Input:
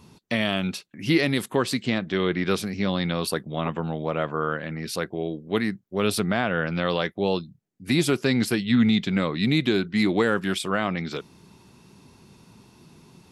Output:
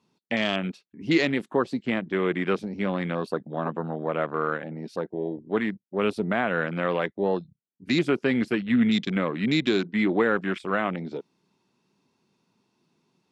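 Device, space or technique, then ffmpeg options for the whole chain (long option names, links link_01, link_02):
over-cleaned archive recording: -af "highpass=190,lowpass=7000,afwtdn=0.0251"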